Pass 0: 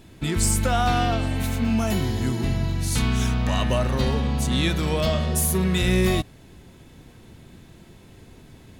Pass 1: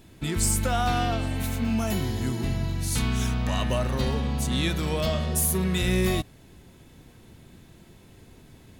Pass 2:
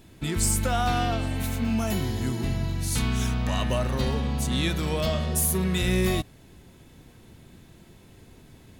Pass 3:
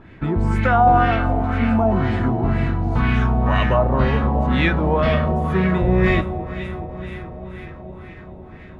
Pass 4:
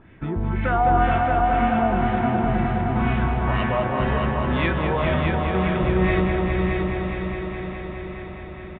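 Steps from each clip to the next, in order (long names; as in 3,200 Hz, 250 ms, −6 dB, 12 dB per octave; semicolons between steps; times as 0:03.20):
high-shelf EQ 10,000 Hz +5.5 dB; level −3.5 dB
no processing that can be heard
delay that swaps between a low-pass and a high-pass 213 ms, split 1,100 Hz, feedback 84%, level −11 dB; auto-filter low-pass sine 2 Hz 760–2,100 Hz; level +7 dB
downsampling to 8,000 Hz; on a send: echo machine with several playback heads 208 ms, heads all three, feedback 69%, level −8 dB; on the sum: level −5.5 dB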